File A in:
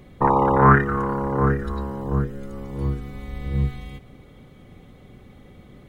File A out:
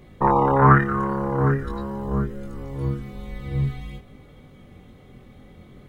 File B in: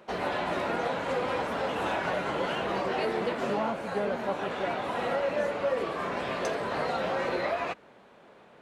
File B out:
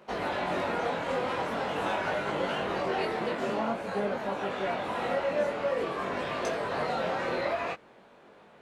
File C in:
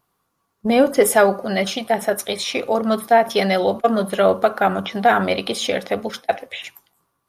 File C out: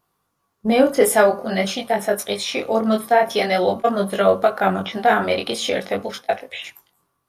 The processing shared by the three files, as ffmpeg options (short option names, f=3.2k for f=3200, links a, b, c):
-af "flanger=delay=19.5:depth=4.3:speed=0.47,volume=2.5dB"